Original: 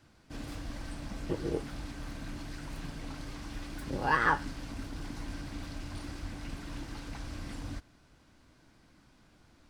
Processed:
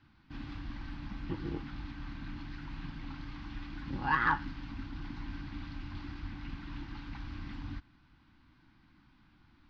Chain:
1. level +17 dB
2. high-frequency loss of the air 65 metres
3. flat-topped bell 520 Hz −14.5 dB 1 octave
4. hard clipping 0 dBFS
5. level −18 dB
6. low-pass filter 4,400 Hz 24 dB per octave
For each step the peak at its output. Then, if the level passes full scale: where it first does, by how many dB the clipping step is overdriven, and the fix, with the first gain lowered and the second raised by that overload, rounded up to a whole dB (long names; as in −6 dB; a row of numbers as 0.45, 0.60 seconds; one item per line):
+4.0, +3.5, +3.5, 0.0, −18.0, −17.0 dBFS
step 1, 3.5 dB
step 1 +13 dB, step 5 −14 dB